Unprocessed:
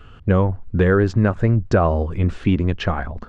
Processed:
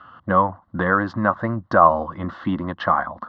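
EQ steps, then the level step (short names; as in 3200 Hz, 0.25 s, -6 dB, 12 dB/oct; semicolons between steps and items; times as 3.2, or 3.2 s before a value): speaker cabinet 270–3900 Hz, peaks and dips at 350 Hz +5 dB, 540 Hz +4 dB, 1100 Hz +9 dB, 2000 Hz +7 dB; fixed phaser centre 1000 Hz, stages 4; +4.5 dB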